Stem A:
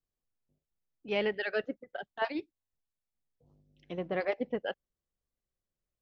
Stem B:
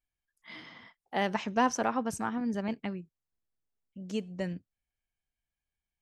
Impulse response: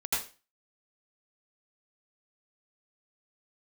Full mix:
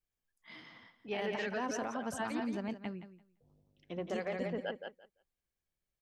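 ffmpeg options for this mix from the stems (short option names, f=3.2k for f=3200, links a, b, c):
-filter_complex "[0:a]volume=-3dB,asplit=2[a][b];[b]volume=-7dB[c];[1:a]volume=-5.5dB,asplit=2[d][e];[e]volume=-13dB[f];[c][f]amix=inputs=2:normalize=0,aecho=0:1:171|342|513:1|0.16|0.0256[g];[a][d][g]amix=inputs=3:normalize=0,alimiter=level_in=3.5dB:limit=-24dB:level=0:latency=1:release=35,volume=-3.5dB"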